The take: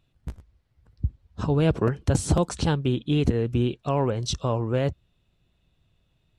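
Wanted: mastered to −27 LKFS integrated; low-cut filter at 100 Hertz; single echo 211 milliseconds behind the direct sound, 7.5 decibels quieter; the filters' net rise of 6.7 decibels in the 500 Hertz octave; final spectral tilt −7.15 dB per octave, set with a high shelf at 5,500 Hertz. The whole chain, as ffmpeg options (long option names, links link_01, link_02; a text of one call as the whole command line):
ffmpeg -i in.wav -af "highpass=100,equalizer=frequency=500:width_type=o:gain=8,highshelf=frequency=5500:gain=-4,aecho=1:1:211:0.422,volume=-5.5dB" out.wav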